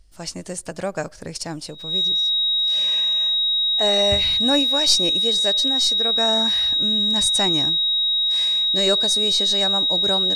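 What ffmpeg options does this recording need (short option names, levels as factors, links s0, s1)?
-af "bandreject=f=3800:w=30"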